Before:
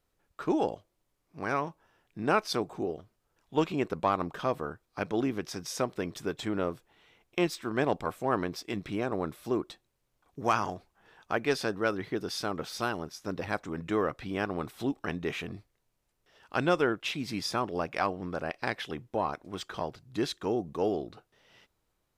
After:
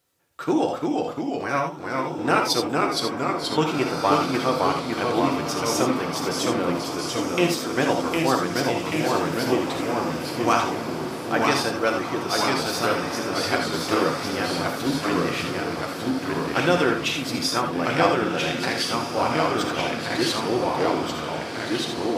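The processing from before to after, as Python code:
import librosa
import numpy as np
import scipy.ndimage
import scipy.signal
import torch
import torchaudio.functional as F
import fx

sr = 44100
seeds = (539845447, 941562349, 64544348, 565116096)

p1 = scipy.signal.sosfilt(scipy.signal.butter(2, 110.0, 'highpass', fs=sr, output='sos'), x)
p2 = fx.high_shelf(p1, sr, hz=3200.0, db=7.5)
p3 = fx.level_steps(p2, sr, step_db=14)
p4 = p2 + (p3 * librosa.db_to_amplitude(-3.0))
p5 = fx.notch_comb(p4, sr, f0_hz=210.0)
p6 = fx.echo_pitch(p5, sr, ms=319, semitones=-1, count=2, db_per_echo=-3.0)
p7 = p6 + fx.echo_diffused(p6, sr, ms=1616, feedback_pct=43, wet_db=-7.5, dry=0)
p8 = fx.rev_gated(p7, sr, seeds[0], gate_ms=100, shape='rising', drr_db=4.5)
y = p8 * librosa.db_to_amplitude(2.5)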